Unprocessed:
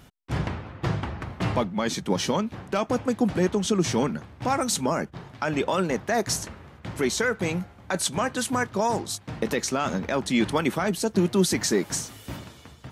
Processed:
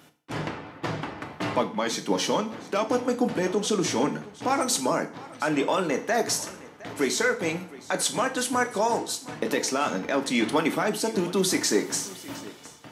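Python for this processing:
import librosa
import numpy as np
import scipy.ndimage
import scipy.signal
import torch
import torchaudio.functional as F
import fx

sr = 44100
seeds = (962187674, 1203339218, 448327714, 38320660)

y = scipy.signal.sosfilt(scipy.signal.butter(2, 220.0, 'highpass', fs=sr, output='sos'), x)
y = y + 10.0 ** (-19.5 / 20.0) * np.pad(y, (int(712 * sr / 1000.0), 0))[:len(y)]
y = fx.rev_fdn(y, sr, rt60_s=0.48, lf_ratio=0.95, hf_ratio=1.0, size_ms=20.0, drr_db=6.0)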